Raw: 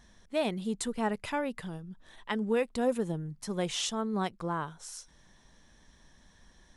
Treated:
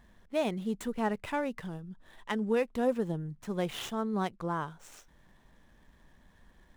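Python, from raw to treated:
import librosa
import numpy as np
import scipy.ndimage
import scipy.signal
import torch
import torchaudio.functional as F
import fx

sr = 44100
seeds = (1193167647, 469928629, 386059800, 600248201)

y = scipy.ndimage.median_filter(x, 9, mode='constant')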